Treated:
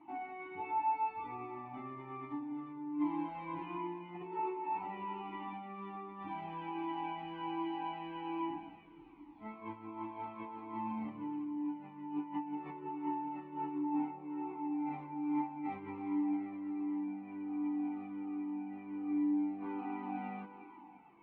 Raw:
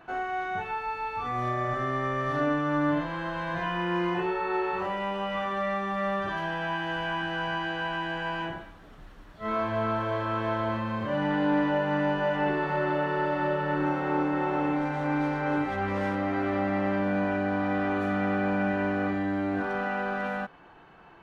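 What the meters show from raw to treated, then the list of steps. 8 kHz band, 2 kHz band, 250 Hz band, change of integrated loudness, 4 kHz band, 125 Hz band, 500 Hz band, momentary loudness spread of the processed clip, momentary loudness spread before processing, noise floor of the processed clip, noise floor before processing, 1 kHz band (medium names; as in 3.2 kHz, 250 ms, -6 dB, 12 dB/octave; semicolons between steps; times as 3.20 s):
no reading, -22.5 dB, -8.0 dB, -11.0 dB, -18.5 dB, -20.0 dB, -19.5 dB, 10 LU, 5 LU, -55 dBFS, -50 dBFS, -10.0 dB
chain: treble shelf 4.2 kHz -10.5 dB; compressor with a negative ratio -31 dBFS, ratio -0.5; vowel filter u; echo whose repeats swap between lows and highs 176 ms, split 860 Hz, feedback 57%, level -7 dB; Shepard-style flanger falling 1.3 Hz; trim +6.5 dB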